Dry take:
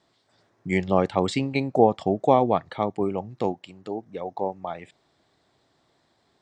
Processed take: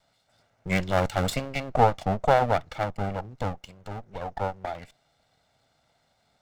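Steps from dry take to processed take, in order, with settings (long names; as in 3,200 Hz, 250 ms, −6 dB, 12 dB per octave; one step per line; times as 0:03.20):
lower of the sound and its delayed copy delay 1.4 ms
0:00.67–0:01.30: high-shelf EQ 3,900 Hz +7.5 dB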